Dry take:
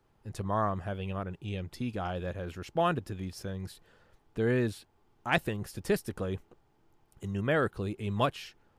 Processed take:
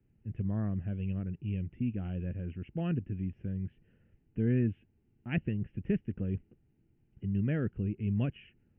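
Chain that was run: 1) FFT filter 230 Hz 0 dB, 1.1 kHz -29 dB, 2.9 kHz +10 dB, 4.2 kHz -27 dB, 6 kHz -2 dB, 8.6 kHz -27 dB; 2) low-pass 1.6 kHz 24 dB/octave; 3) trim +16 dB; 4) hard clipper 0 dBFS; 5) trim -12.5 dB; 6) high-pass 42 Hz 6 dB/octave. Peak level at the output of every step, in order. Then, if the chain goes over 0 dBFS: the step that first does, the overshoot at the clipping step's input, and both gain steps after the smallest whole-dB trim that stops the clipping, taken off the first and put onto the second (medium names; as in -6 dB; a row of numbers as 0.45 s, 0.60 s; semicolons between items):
-13.5 dBFS, -21.5 dBFS, -5.5 dBFS, -5.5 dBFS, -18.0 dBFS, -18.5 dBFS; nothing clips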